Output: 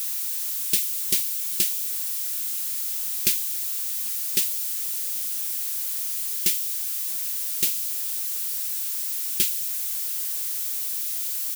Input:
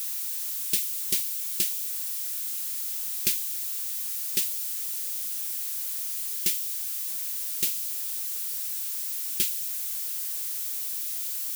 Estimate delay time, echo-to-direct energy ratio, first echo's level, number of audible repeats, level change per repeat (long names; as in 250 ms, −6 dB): 797 ms, −22.5 dB, −23.5 dB, 2, −6.0 dB